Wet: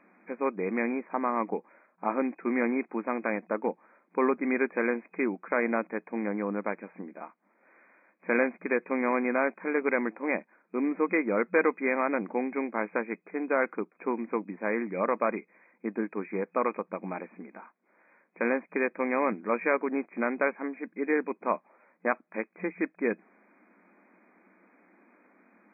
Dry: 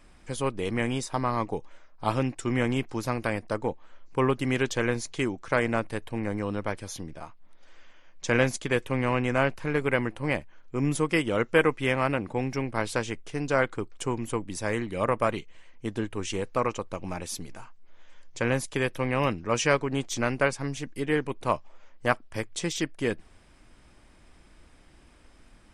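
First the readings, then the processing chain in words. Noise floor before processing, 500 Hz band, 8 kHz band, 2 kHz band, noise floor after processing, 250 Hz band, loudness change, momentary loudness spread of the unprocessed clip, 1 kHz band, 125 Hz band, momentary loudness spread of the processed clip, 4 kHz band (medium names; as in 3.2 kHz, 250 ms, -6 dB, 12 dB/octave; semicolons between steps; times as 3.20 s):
-55 dBFS, -1.0 dB, under -40 dB, -1.5 dB, -71 dBFS, -0.5 dB, -1.5 dB, 10 LU, -1.0 dB, under -15 dB, 10 LU, under -40 dB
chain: FFT band-pass 180–2500 Hz; in parallel at +2 dB: peak limiter -16 dBFS, peak gain reduction 9 dB; on the sum: trim -7 dB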